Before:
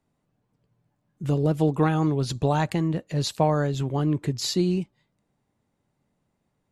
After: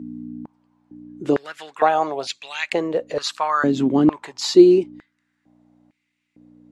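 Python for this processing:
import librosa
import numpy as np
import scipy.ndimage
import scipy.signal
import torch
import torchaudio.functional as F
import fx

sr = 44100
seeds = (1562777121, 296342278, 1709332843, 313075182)

y = scipy.signal.sosfilt(scipy.signal.butter(2, 7300.0, 'lowpass', fs=sr, output='sos'), x)
y = fx.add_hum(y, sr, base_hz=60, snr_db=10)
y = fx.filter_held_highpass(y, sr, hz=2.2, low_hz=260.0, high_hz=2300.0)
y = y * librosa.db_to_amplitude(4.0)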